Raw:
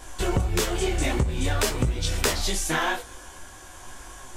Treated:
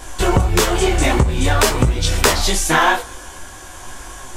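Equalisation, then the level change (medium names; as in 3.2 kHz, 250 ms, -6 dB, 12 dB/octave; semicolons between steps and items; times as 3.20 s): dynamic bell 1 kHz, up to +5 dB, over -39 dBFS, Q 1.2; +8.5 dB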